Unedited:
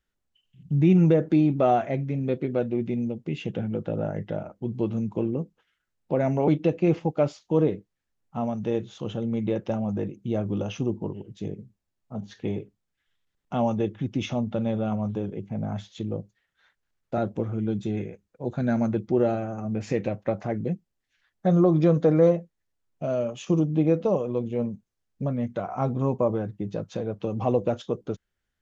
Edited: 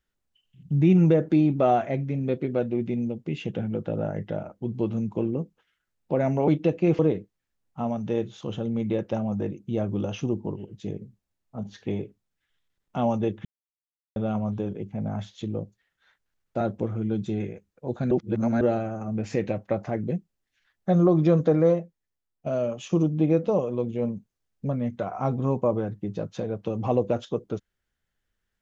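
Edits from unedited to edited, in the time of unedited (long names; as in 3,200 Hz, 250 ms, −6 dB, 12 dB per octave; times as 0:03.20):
0:06.99–0:07.56: remove
0:14.02–0:14.73: silence
0:18.68–0:19.18: reverse
0:21.98–0:23.03: fade out, to −10.5 dB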